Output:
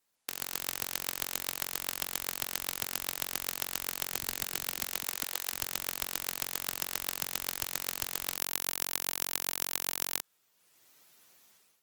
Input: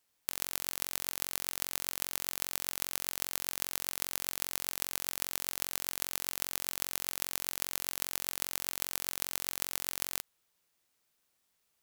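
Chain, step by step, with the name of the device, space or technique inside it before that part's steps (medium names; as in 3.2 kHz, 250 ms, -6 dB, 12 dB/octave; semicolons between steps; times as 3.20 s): 4.12–5.50 s: high-pass 100 Hz -> 370 Hz 24 dB/octave; video call (high-pass 110 Hz 12 dB/octave; level rider gain up to 15.5 dB; Opus 16 kbps 48 kHz)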